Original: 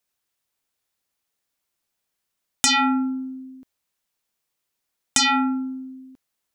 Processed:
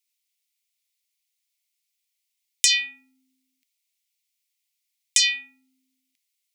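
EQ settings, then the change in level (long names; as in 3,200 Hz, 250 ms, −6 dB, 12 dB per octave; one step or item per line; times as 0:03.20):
elliptic high-pass filter 2,100 Hz, stop band 40 dB
+1.5 dB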